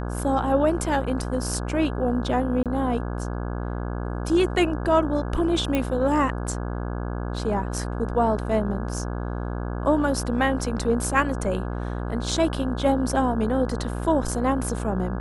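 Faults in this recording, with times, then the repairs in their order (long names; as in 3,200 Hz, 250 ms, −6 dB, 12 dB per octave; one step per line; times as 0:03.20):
mains buzz 60 Hz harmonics 28 −29 dBFS
0:02.63–0:02.66: drop-out 27 ms
0:05.75: click −11 dBFS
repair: click removal
hum removal 60 Hz, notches 28
repair the gap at 0:02.63, 27 ms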